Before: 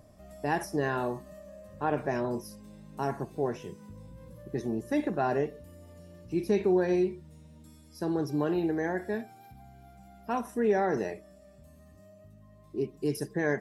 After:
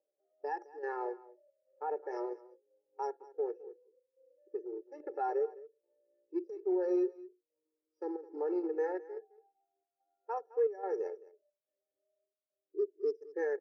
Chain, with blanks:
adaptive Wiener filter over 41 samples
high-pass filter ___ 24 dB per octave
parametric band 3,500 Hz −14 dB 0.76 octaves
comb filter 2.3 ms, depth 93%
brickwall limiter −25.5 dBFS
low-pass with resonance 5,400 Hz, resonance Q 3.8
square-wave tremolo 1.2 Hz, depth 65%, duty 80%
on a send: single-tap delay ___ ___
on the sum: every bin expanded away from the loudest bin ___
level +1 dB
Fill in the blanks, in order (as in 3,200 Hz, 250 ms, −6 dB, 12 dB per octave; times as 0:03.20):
430 Hz, 212 ms, −13 dB, 1.5 to 1